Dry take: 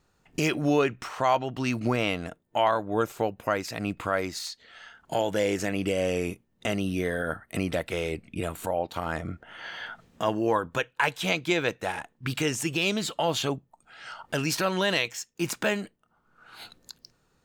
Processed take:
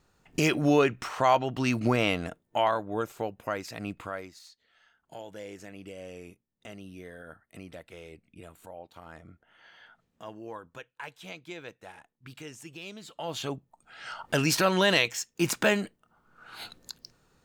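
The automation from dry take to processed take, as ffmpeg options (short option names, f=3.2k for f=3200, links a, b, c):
-af "volume=20dB,afade=t=out:st=2.17:d=0.86:silence=0.473151,afade=t=out:st=3.9:d=0.44:silence=0.281838,afade=t=in:st=13.05:d=0.5:silence=0.251189,afade=t=in:st=13.55:d=0.73:silence=0.446684"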